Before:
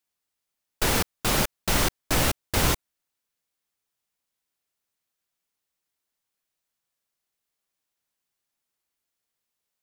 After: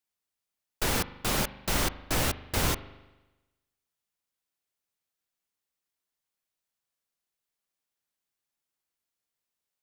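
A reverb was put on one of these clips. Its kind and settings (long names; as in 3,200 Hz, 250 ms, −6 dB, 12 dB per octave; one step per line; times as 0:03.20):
spring reverb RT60 1.1 s, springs 40 ms, chirp 45 ms, DRR 14.5 dB
level −4.5 dB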